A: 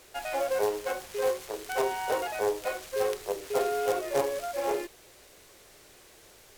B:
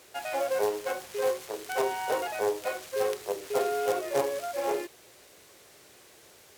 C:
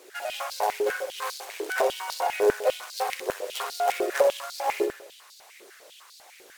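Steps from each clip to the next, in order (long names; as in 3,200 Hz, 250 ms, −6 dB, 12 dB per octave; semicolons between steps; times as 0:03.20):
high-pass filter 90 Hz 12 dB per octave
flutter between parallel walls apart 10.7 metres, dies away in 0.66 s; harmonic and percussive parts rebalanced percussive +8 dB; high-pass on a step sequencer 10 Hz 380–4,400 Hz; level −4.5 dB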